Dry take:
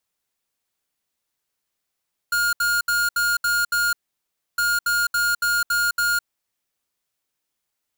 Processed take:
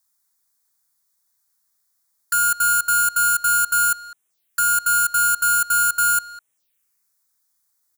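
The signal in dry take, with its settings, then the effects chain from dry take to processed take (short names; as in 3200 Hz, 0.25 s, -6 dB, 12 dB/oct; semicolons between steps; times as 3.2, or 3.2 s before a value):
beep pattern square 1420 Hz, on 0.21 s, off 0.07 s, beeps 6, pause 0.65 s, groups 2, -20.5 dBFS
high shelf 2600 Hz +12 dB; envelope phaser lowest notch 460 Hz, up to 4700 Hz, full sweep at -31.5 dBFS; speakerphone echo 0.2 s, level -8 dB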